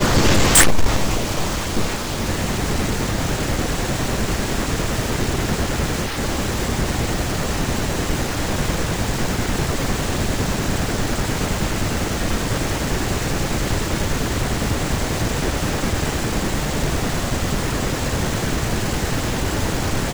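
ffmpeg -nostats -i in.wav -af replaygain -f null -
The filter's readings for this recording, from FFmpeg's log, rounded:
track_gain = +6.7 dB
track_peak = 0.371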